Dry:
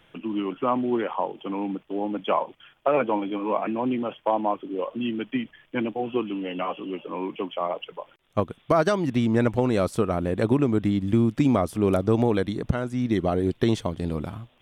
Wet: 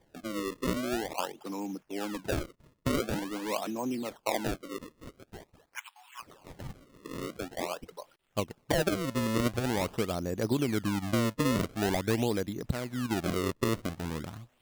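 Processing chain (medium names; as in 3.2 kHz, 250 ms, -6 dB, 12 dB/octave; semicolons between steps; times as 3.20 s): 4.78–7.01 s: steep high-pass 890 Hz 72 dB/octave; decimation with a swept rate 32×, swing 160% 0.46 Hz; trim -7.5 dB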